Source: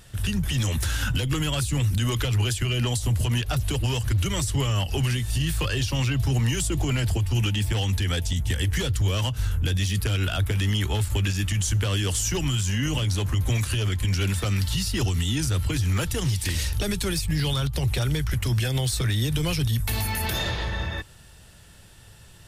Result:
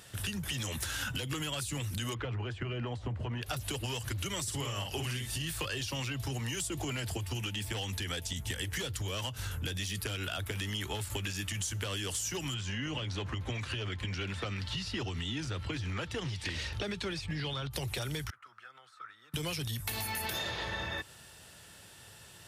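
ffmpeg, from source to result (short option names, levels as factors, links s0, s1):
-filter_complex "[0:a]asplit=3[s0][s1][s2];[s0]afade=t=out:st=2.13:d=0.02[s3];[s1]lowpass=1600,afade=t=in:st=2.13:d=0.02,afade=t=out:st=3.41:d=0.02[s4];[s2]afade=t=in:st=3.41:d=0.02[s5];[s3][s4][s5]amix=inputs=3:normalize=0,asettb=1/sr,asplit=3[s6][s7][s8];[s6]atrim=end=4.434[s9];[s7]atrim=start=4.43:end=5.35,asetpts=PTS-STARTPTS,afade=t=in:d=0.004:c=qsin,afade=t=out:st=0.916:d=0.004:c=qsin,asplit=2[s10][s11];[s11]adelay=49,volume=0.562[s12];[s10][s12]amix=inputs=2:normalize=0,atrim=end_sample=40572[s13];[s8]atrim=start=5.346[s14];[s9][s13]acrossfade=d=0.004:c1=hsin:c2=qsin[s15];[s15][s14]acrossfade=d=0.004:c1=qsin:c2=hsin,asettb=1/sr,asplit=3[s16][s17][s18];[s16]atrim=end=12.544[s19];[s17]atrim=start=12.54:end=17.71,asetpts=PTS-STARTPTS,afade=t=in:d=0.004:c=qsin,afade=t=out:st=5.166:d=0.004:c=qsin,lowpass=3700[s20];[s18]atrim=start=17.706[s21];[s19][s20]acrossfade=d=0.004:c1=hsin:c2=qsin[s22];[s22][s21]acrossfade=d=0.004:c1=qsin:c2=hsin,asettb=1/sr,asplit=3[s23][s24][s25];[s23]atrim=end=18.304[s26];[s24]atrim=start=18.3:end=19.34,asetpts=PTS-STARTPTS,afade=t=in:d=0.004:c=qsin,afade=t=out:st=1.036:d=0.004:c=qsin,bandpass=f=1300:t=q:w=14[s27];[s25]atrim=start=19.336[s28];[s26][s27]acrossfade=d=0.004:c1=hsin:c2=qsin[s29];[s29][s28]acrossfade=d=0.004:c1=qsin:c2=hsin,highpass=120,equalizer=f=160:w=0.67:g=-5.5,acompressor=threshold=0.0224:ratio=6"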